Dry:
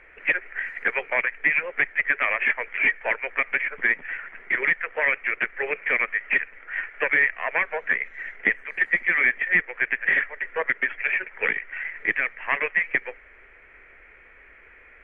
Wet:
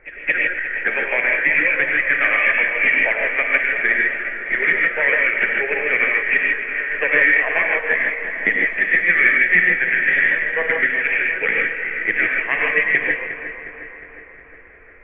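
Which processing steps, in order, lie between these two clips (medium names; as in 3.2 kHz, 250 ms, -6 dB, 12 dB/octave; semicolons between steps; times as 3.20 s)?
backward echo that repeats 180 ms, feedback 79%, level -11 dB; peaking EQ 1 kHz -7 dB 0.6 oct; gated-style reverb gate 180 ms rising, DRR -0.5 dB; level-controlled noise filter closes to 1.3 kHz, open at -13.5 dBFS; pre-echo 220 ms -17 dB; trim +3.5 dB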